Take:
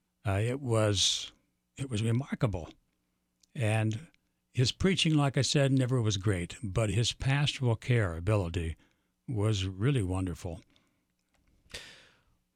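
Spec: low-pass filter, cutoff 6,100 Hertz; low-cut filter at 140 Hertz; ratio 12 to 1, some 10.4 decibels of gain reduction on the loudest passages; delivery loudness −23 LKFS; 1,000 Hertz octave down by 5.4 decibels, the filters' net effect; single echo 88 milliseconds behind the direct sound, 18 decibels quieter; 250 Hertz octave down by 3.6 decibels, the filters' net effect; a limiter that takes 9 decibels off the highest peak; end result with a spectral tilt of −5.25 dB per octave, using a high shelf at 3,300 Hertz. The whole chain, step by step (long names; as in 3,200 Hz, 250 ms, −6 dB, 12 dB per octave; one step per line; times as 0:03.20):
high-pass filter 140 Hz
low-pass filter 6,100 Hz
parametric band 250 Hz −3.5 dB
parametric band 1,000 Hz −7 dB
high-shelf EQ 3,300 Hz −5 dB
downward compressor 12 to 1, threshold −35 dBFS
brickwall limiter −33 dBFS
single-tap delay 88 ms −18 dB
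level +21 dB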